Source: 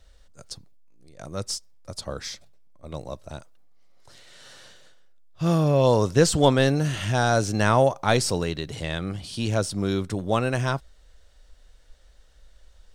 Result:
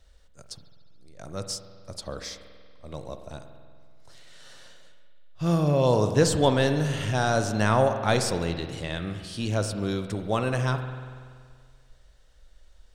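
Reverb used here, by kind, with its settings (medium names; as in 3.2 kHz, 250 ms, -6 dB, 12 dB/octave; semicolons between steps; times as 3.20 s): spring tank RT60 1.9 s, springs 47 ms, chirp 25 ms, DRR 7.5 dB; trim -3 dB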